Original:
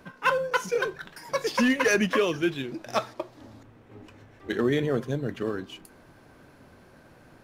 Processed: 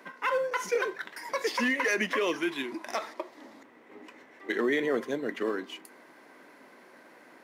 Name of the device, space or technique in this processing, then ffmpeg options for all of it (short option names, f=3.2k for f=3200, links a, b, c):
laptop speaker: -filter_complex "[0:a]asettb=1/sr,asplit=3[a][b][c];[a]atrim=end=2.364[d];[b]atrim=start=2.36:end=2.92,asetpts=PTS-STARTPTS,afade=t=in:d=0.004:c=qsin,afade=t=out:st=0.556:d=0.004:c=qsin,equalizer=f=500:t=o:w=0.33:g=-9,equalizer=f=1k:t=o:w=0.33:g=10,equalizer=f=10k:t=o:w=0.33:g=7[e];[c]atrim=start=2.916[f];[d][e]acrossfade=d=0.004:c1=hsin:c2=qsin[g];[g][f]acrossfade=d=0.004:c1=qsin:c2=hsin,highpass=f=250:w=0.5412,highpass=f=250:w=1.3066,equalizer=f=1k:t=o:w=0.23:g=5,equalizer=f=2k:t=o:w=0.27:g=11,alimiter=limit=-18.5dB:level=0:latency=1:release=69"